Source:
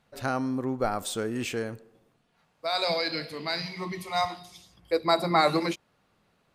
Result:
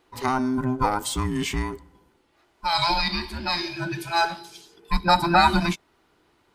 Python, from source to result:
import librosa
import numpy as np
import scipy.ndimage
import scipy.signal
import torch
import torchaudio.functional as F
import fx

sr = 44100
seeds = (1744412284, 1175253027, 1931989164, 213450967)

y = fx.band_invert(x, sr, width_hz=500)
y = F.gain(torch.from_numpy(y), 5.0).numpy()